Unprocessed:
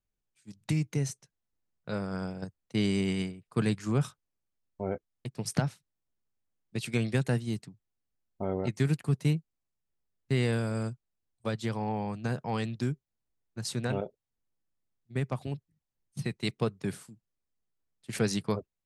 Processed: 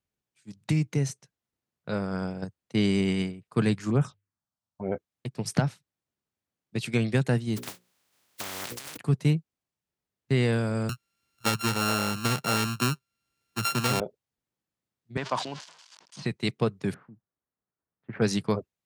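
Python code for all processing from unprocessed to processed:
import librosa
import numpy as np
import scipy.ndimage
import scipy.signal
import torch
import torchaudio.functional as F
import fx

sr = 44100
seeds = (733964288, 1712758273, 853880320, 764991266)

y = fx.chain(x, sr, fx.lowpass(hz=8000.0, slope=12),
    fx.hum_notches(base_hz=50, count=2),
    fx.env_phaser(low_hz=360.0, high_hz=4600.0, full_db=-23.0), at=(3.9, 4.92))
y = fx.spec_flatten(y, sr, power=0.11, at=(7.56, 8.96), fade=0.02)
y = fx.hum_notches(y, sr, base_hz=60, count=9, at=(7.56, 8.96), fade=0.02)
y = fx.over_compress(y, sr, threshold_db=-39.0, ratio=-1.0, at=(7.56, 8.96), fade=0.02)
y = fx.chain(y, sr, fx.sample_sort(block=32),
    fx.high_shelf(hz=2200.0, db=9.0),
    fx.band_squash(depth_pct=40), at=(10.89, 14.0))
y = fx.chain(y, sr, fx.crossing_spikes(level_db=-35.0),
    fx.cabinet(low_hz=310.0, low_slope=12, high_hz=6300.0, hz=(420.0, 640.0, 990.0, 1500.0, 3100.0, 4700.0), db=(-4, 3, 10, 5, 4, 4)),
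    fx.sustainer(db_per_s=91.0), at=(15.17, 16.26))
y = fx.chain(y, sr, fx.lowpass(hz=1600.0, slope=24),
    fx.tilt_shelf(db=-3.0, hz=1100.0), at=(16.94, 18.22))
y = scipy.signal.sosfilt(scipy.signal.butter(2, 82.0, 'highpass', fs=sr, output='sos'), y)
y = fx.high_shelf(y, sr, hz=7600.0, db=-6.5)
y = F.gain(torch.from_numpy(y), 4.0).numpy()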